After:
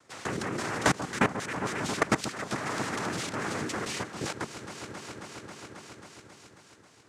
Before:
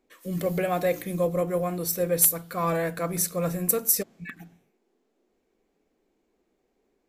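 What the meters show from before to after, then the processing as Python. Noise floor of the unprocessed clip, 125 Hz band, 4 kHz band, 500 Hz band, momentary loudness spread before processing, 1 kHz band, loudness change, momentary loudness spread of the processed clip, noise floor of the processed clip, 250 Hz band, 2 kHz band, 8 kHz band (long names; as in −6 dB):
−74 dBFS, −4.5 dB, +4.5 dB, −8.0 dB, 9 LU, +1.0 dB, −6.5 dB, 17 LU, −57 dBFS, −2.0 dB, +6.5 dB, −10.0 dB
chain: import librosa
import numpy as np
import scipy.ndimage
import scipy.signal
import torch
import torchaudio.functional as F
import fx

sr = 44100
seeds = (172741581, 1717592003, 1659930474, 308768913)

y = fx.spec_clip(x, sr, under_db=14)
y = fx.noise_vocoder(y, sr, seeds[0], bands=3)
y = fx.level_steps(y, sr, step_db=23)
y = fx.echo_alternate(y, sr, ms=135, hz=1400.0, feedback_pct=82, wet_db=-11.5)
y = fx.band_squash(y, sr, depth_pct=70)
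y = y * 10.0 ** (8.0 / 20.0)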